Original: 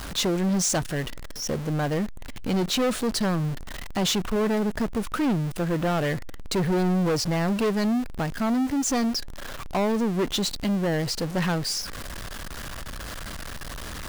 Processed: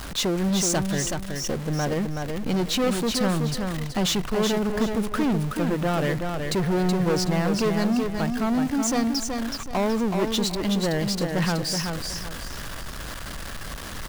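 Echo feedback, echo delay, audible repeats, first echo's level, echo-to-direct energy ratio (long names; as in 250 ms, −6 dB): 31%, 375 ms, 3, −5.0 dB, −4.5 dB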